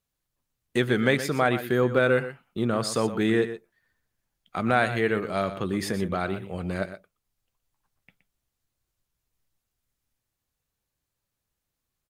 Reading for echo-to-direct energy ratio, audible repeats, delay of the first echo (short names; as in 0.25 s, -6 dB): -12.0 dB, 1, 0.12 s